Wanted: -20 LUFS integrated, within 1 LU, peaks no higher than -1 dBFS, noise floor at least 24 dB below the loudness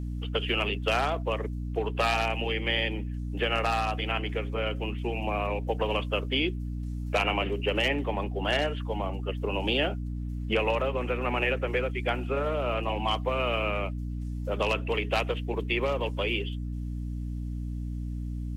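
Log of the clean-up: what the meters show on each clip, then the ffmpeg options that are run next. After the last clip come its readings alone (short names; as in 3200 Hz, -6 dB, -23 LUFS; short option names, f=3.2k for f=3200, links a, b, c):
hum 60 Hz; harmonics up to 300 Hz; hum level -31 dBFS; loudness -29.5 LUFS; peak -13.5 dBFS; loudness target -20.0 LUFS
-> -af "bandreject=f=60:t=h:w=4,bandreject=f=120:t=h:w=4,bandreject=f=180:t=h:w=4,bandreject=f=240:t=h:w=4,bandreject=f=300:t=h:w=4"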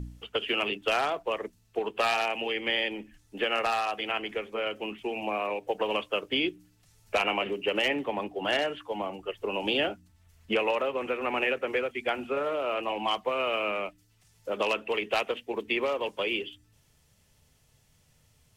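hum none; loudness -29.5 LUFS; peak -15.0 dBFS; loudness target -20.0 LUFS
-> -af "volume=9.5dB"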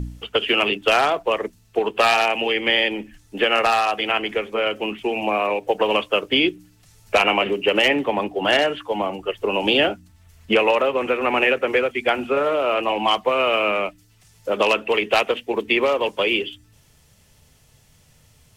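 loudness -20.0 LUFS; peak -5.5 dBFS; noise floor -56 dBFS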